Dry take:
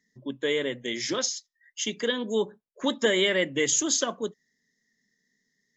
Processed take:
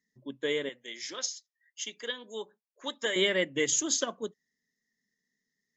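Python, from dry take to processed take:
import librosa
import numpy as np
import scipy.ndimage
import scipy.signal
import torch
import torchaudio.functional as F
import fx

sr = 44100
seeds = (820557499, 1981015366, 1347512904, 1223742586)

y = fx.highpass(x, sr, hz=830.0, slope=6, at=(0.69, 3.16))
y = fx.upward_expand(y, sr, threshold_db=-35.0, expansion=1.5)
y = F.gain(torch.from_numpy(y), -2.0).numpy()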